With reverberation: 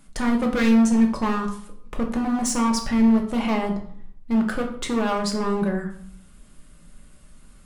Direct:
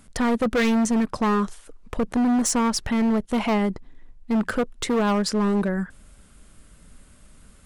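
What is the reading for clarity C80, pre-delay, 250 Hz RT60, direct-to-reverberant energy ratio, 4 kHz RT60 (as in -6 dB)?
12.0 dB, 3 ms, 0.75 s, 1.0 dB, 0.45 s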